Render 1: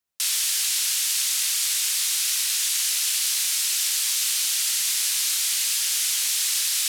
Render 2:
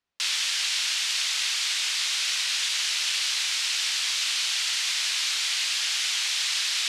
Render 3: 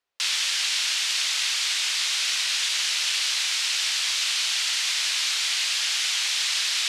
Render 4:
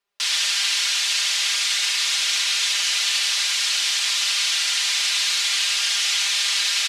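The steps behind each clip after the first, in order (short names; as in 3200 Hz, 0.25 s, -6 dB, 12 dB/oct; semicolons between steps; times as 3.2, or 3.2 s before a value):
LPF 4000 Hz 12 dB/oct; gain +4.5 dB
resonant low shelf 320 Hz -8 dB, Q 1.5; gain +1.5 dB
comb 5 ms, depth 85%; echo 76 ms -5.5 dB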